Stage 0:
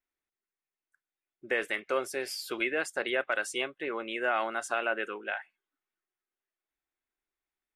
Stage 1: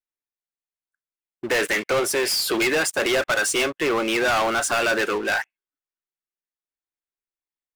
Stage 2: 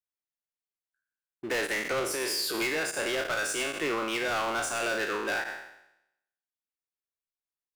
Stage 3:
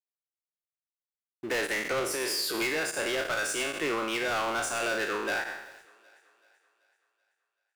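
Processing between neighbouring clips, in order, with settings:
leveller curve on the samples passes 5
peak hold with a decay on every bin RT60 0.82 s; brickwall limiter −15 dBFS, peak gain reduction 8 dB; level −8.5 dB
centre clipping without the shift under −54.5 dBFS; feedback echo with a high-pass in the loop 382 ms, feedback 52%, high-pass 310 Hz, level −23 dB

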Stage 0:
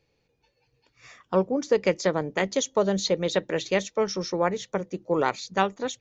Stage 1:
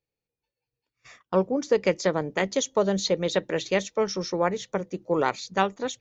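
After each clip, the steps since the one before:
noise gate −50 dBFS, range −19 dB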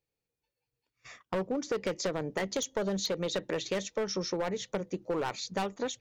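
hard clipping −21 dBFS, distortion −9 dB
downward compressor, threshold −29 dBFS, peak gain reduction 6.5 dB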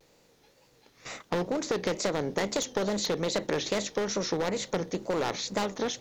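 compressor on every frequency bin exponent 0.6
tape wow and flutter 120 cents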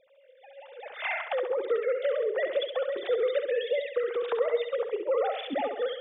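three sine waves on the formant tracks
camcorder AGC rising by 25 dB per second
flutter between parallel walls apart 11.5 metres, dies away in 0.62 s

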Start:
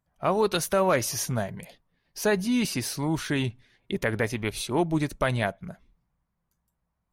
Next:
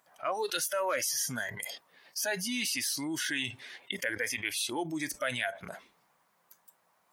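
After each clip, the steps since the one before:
high-pass filter 530 Hz 12 dB per octave
noise reduction from a noise print of the clip's start 17 dB
envelope flattener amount 70%
level −6.5 dB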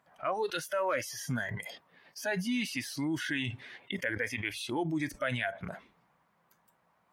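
bass and treble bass +9 dB, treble −12 dB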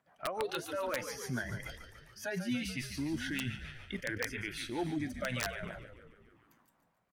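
echo with shifted repeats 144 ms, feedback 62%, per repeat −57 Hz, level −9.5 dB
rotating-speaker cabinet horn 7 Hz, later 0.9 Hz, at 0:04.22
wrap-around overflow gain 22 dB
level −2 dB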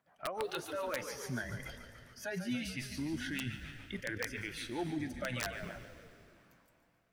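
convolution reverb RT60 3.2 s, pre-delay 117 ms, DRR 15 dB
level −2 dB

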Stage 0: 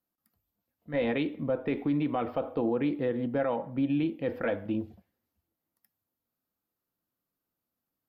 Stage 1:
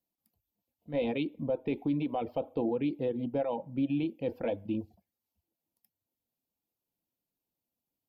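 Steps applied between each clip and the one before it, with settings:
reverb reduction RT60 0.52 s
flat-topped bell 1,500 Hz −12.5 dB 1 octave
level −1.5 dB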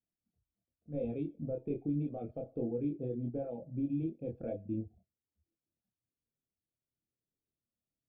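moving average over 45 samples
tuned comb filter 130 Hz, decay 0.23 s, harmonics odd, mix 50%
multi-voice chorus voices 6, 0.25 Hz, delay 26 ms, depth 1.5 ms
level +6 dB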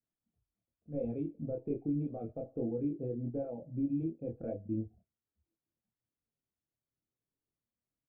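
low-pass filter 1,600 Hz 12 dB per octave
double-tracking delay 18 ms −12.5 dB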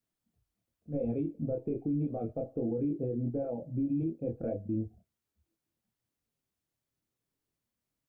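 brickwall limiter −30 dBFS, peak gain reduction 6.5 dB
level +5.5 dB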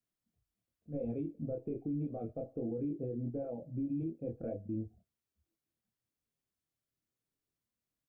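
notch filter 880 Hz, Q 12
level −5 dB

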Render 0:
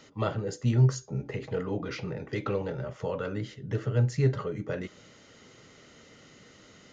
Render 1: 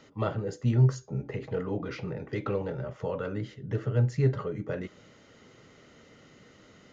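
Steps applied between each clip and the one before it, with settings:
high-shelf EQ 3,200 Hz −8 dB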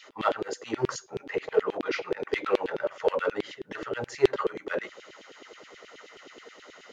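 in parallel at −8.5 dB: hard clipping −31.5 dBFS, distortion −3 dB
on the sum: auto-filter high-pass saw down 9.4 Hz 310–3,400 Hz
level +3.5 dB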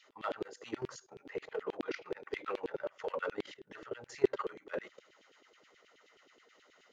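output level in coarse steps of 15 dB
level −5 dB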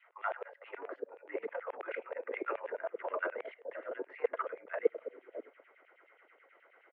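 multiband delay without the direct sound highs, lows 610 ms, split 440 Hz
single-sideband voice off tune +71 Hz 230–2,300 Hz
level +3 dB

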